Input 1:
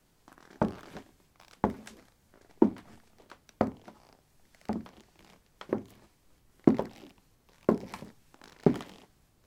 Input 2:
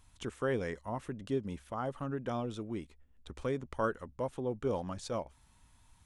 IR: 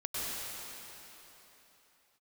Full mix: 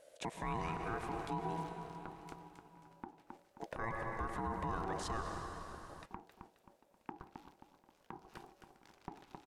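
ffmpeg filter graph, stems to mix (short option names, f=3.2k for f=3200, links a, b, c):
-filter_complex "[0:a]acompressor=threshold=-31dB:ratio=5,adelay=150,volume=-4dB,asplit=2[a][b];[b]volume=-4.5dB[c];[1:a]volume=1dB,asplit=3[d][e][f];[d]atrim=end=1.63,asetpts=PTS-STARTPTS,afade=t=out:st=1.626:d=0.004:c=hsin[g];[e]atrim=start=1.63:end=3.6,asetpts=PTS-STARTPTS,volume=0[h];[f]atrim=start=3.6,asetpts=PTS-STARTPTS,afade=t=in:d=0.004:c=hsin[i];[g][h][i]concat=n=3:v=0:a=1,asplit=3[j][k][l];[k]volume=-9.5dB[m];[l]apad=whole_len=423801[n];[a][n]sidechaingate=range=-32dB:threshold=-54dB:ratio=16:detection=peak[o];[2:a]atrim=start_sample=2205[p];[m][p]afir=irnorm=-1:irlink=0[q];[c]aecho=0:1:266|532|798|1064|1330:1|0.39|0.152|0.0593|0.0231[r];[o][j][q][r]amix=inputs=4:normalize=0,aeval=exprs='val(0)*sin(2*PI*570*n/s)':c=same,alimiter=level_in=5dB:limit=-24dB:level=0:latency=1:release=55,volume=-5dB"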